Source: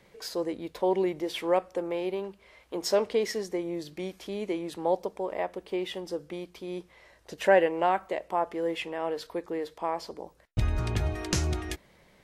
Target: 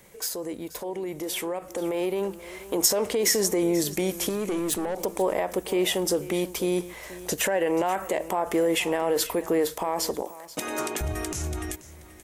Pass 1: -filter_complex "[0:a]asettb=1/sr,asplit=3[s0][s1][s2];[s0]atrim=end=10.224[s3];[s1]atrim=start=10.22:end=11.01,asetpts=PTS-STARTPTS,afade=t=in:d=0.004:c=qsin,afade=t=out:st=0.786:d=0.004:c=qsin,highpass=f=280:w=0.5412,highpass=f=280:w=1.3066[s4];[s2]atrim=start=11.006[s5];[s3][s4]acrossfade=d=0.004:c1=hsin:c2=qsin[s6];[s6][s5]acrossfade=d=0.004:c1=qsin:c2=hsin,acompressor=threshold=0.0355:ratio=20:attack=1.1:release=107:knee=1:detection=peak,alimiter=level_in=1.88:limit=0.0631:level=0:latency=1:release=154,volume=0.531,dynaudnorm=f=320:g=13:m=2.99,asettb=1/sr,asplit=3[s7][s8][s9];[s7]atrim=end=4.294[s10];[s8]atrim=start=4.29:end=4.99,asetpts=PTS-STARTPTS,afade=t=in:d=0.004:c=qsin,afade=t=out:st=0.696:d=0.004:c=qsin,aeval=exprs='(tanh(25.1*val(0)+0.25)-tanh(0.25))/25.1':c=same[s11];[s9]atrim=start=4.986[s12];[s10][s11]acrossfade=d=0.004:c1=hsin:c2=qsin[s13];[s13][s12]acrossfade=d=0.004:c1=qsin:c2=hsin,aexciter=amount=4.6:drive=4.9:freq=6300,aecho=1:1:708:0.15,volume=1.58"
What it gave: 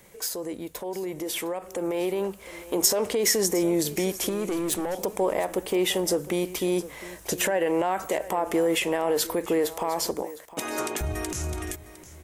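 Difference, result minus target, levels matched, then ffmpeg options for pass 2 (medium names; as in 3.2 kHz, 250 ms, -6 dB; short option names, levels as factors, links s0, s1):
echo 225 ms late
-filter_complex "[0:a]asettb=1/sr,asplit=3[s0][s1][s2];[s0]atrim=end=10.224[s3];[s1]atrim=start=10.22:end=11.01,asetpts=PTS-STARTPTS,afade=t=in:d=0.004:c=qsin,afade=t=out:st=0.786:d=0.004:c=qsin,highpass=f=280:w=0.5412,highpass=f=280:w=1.3066[s4];[s2]atrim=start=11.006[s5];[s3][s4]acrossfade=d=0.004:c1=hsin:c2=qsin[s6];[s6][s5]acrossfade=d=0.004:c1=qsin:c2=hsin,acompressor=threshold=0.0355:ratio=20:attack=1.1:release=107:knee=1:detection=peak,alimiter=level_in=1.88:limit=0.0631:level=0:latency=1:release=154,volume=0.531,dynaudnorm=f=320:g=13:m=2.99,asettb=1/sr,asplit=3[s7][s8][s9];[s7]atrim=end=4.294[s10];[s8]atrim=start=4.29:end=4.99,asetpts=PTS-STARTPTS,afade=t=in:d=0.004:c=qsin,afade=t=out:st=0.696:d=0.004:c=qsin,aeval=exprs='(tanh(25.1*val(0)+0.25)-tanh(0.25))/25.1':c=same[s11];[s9]atrim=start=4.986[s12];[s10][s11]acrossfade=d=0.004:c1=hsin:c2=qsin[s13];[s13][s12]acrossfade=d=0.004:c1=qsin:c2=hsin,aexciter=amount=4.6:drive=4.9:freq=6300,aecho=1:1:483:0.15,volume=1.58"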